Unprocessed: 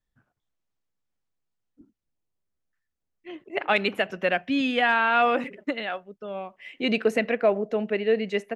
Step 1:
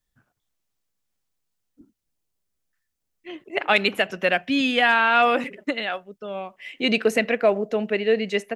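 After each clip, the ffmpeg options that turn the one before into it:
-af "highshelf=f=3.4k:g=8.5,volume=2dB"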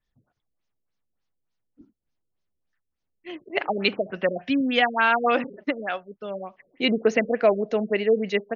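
-af "afftfilt=real='re*lt(b*sr/1024,550*pow(7000/550,0.5+0.5*sin(2*PI*3.4*pts/sr)))':imag='im*lt(b*sr/1024,550*pow(7000/550,0.5+0.5*sin(2*PI*3.4*pts/sr)))':win_size=1024:overlap=0.75"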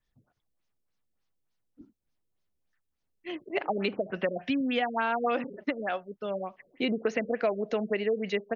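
-filter_complex "[0:a]acrossover=split=930|3900[a][b][c];[a]acompressor=threshold=-27dB:ratio=4[d];[b]acompressor=threshold=-35dB:ratio=4[e];[c]acompressor=threshold=-53dB:ratio=4[f];[d][e][f]amix=inputs=3:normalize=0"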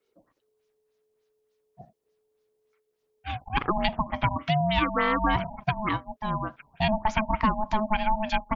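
-af "aeval=exprs='val(0)*sin(2*PI*430*n/s)':c=same,volume=7dB"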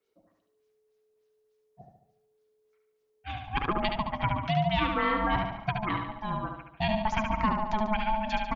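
-af "aecho=1:1:72|144|216|288|360|432|504:0.562|0.292|0.152|0.0791|0.0411|0.0214|0.0111,volume=-4dB"

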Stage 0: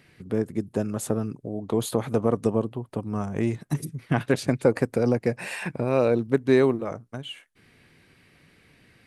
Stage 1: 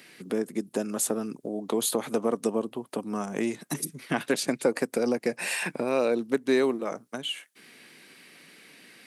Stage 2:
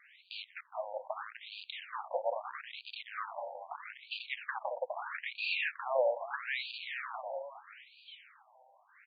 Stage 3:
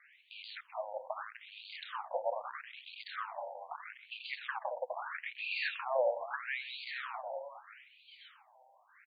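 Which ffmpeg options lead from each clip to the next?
-af "highpass=f=200:w=0.5412,highpass=f=200:w=1.3066,highshelf=f=2.9k:g=10,acompressor=threshold=-37dB:ratio=1.5,volume=3.5dB"
-filter_complex "[0:a]asplit=6[a][b][c][d][e][f];[b]adelay=413,afreqshift=77,volume=-8dB[g];[c]adelay=826,afreqshift=154,volume=-15.1dB[h];[d]adelay=1239,afreqshift=231,volume=-22.3dB[i];[e]adelay=1652,afreqshift=308,volume=-29.4dB[j];[f]adelay=2065,afreqshift=385,volume=-36.5dB[k];[a][g][h][i][j][k]amix=inputs=6:normalize=0,acrusher=bits=6:dc=4:mix=0:aa=0.000001,afftfilt=real='re*between(b*sr/1024,670*pow(3400/670,0.5+0.5*sin(2*PI*0.78*pts/sr))/1.41,670*pow(3400/670,0.5+0.5*sin(2*PI*0.78*pts/sr))*1.41)':imag='im*between(b*sr/1024,670*pow(3400/670,0.5+0.5*sin(2*PI*0.78*pts/sr))/1.41,670*pow(3400/670,0.5+0.5*sin(2*PI*0.78*pts/sr))*1.41)':win_size=1024:overlap=0.75"
-filter_complex "[0:a]acrossover=split=370|3100[a][b][c];[a]adelay=80[d];[c]adelay=130[e];[d][b][e]amix=inputs=3:normalize=0"

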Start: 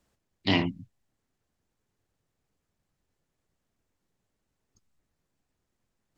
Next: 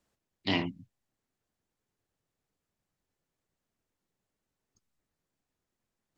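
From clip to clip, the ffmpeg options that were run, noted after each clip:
-af "lowshelf=f=120:g=-6,volume=-4dB"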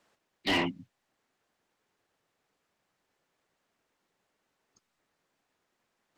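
-filter_complex "[0:a]asplit=2[a][b];[b]highpass=f=720:p=1,volume=23dB,asoftclip=type=tanh:threshold=-13.5dB[c];[a][c]amix=inputs=2:normalize=0,lowpass=f=2.6k:p=1,volume=-6dB,volume=-3.5dB"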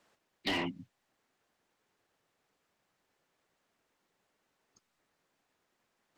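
-af "acompressor=threshold=-31dB:ratio=4"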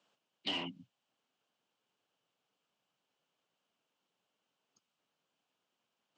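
-af "highpass=f=120:w=0.5412,highpass=f=120:w=1.3066,equalizer=f=360:t=q:w=4:g=-4,equalizer=f=1.9k:t=q:w=4:g=-8,equalizer=f=3k:t=q:w=4:g=9,lowpass=f=8.1k:w=0.5412,lowpass=f=8.1k:w=1.3066,volume=-6dB"

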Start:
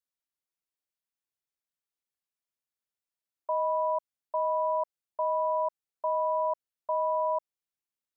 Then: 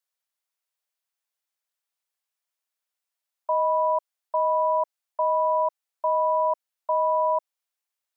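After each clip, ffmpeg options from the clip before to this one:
-af "highpass=f=540:w=0.5412,highpass=f=540:w=1.3066,volume=6dB"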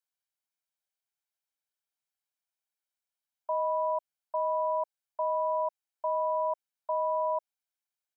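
-af "aecho=1:1:1.3:0.41,volume=-7.5dB"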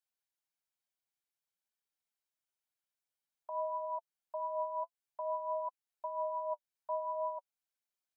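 -af "alimiter=level_in=4dB:limit=-24dB:level=0:latency=1:release=240,volume=-4dB,flanger=delay=3.5:depth=5.8:regen=32:speed=0.52:shape=triangular,volume=1dB"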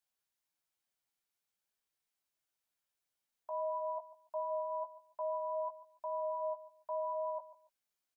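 -filter_complex "[0:a]alimiter=level_in=11dB:limit=-24dB:level=0:latency=1:release=77,volume=-11dB,asplit=2[a][b];[b]adelay=16,volume=-6dB[c];[a][c]amix=inputs=2:normalize=0,aecho=1:1:143|286:0.15|0.0344,volume=2dB"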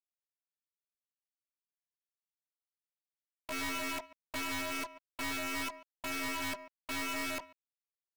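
-af "acrusher=bits=7:mix=0:aa=0.5,aeval=exprs='(mod(47.3*val(0)+1,2)-1)/47.3':c=same,aeval=exprs='(tanh(100*val(0)+0.45)-tanh(0.45))/100':c=same,volume=6dB"

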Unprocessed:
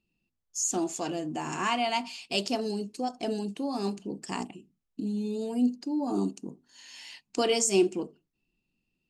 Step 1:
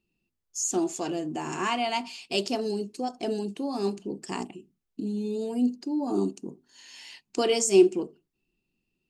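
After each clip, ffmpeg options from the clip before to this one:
-af "equalizer=f=380:t=o:w=0.34:g=6.5"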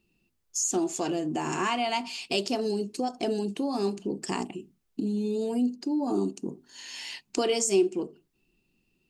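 -af "acompressor=threshold=-37dB:ratio=2,volume=7dB"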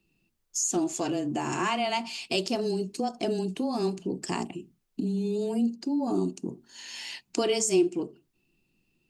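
-af "afreqshift=-14"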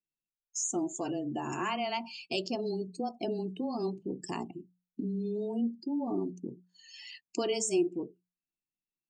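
-af "afftdn=nr=26:nf=-38,bandreject=f=60:t=h:w=6,bandreject=f=120:t=h:w=6,bandreject=f=180:t=h:w=6,volume=-5dB"

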